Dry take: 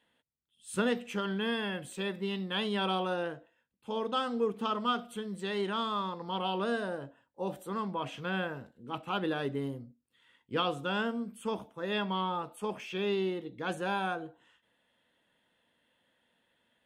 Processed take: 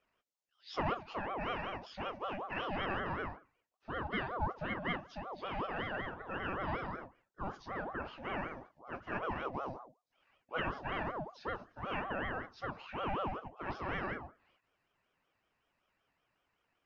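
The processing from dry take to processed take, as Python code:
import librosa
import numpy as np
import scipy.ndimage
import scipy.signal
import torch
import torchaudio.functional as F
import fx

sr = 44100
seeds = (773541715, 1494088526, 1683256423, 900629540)

y = fx.freq_compress(x, sr, knee_hz=1000.0, ratio=1.5)
y = fx.ring_lfo(y, sr, carrier_hz=680.0, swing_pct=45, hz=5.3)
y = y * 10.0 ** (-2.5 / 20.0)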